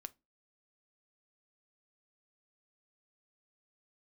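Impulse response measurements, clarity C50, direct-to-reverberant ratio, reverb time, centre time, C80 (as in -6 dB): 25.5 dB, 11.5 dB, not exponential, 2 ms, 35.0 dB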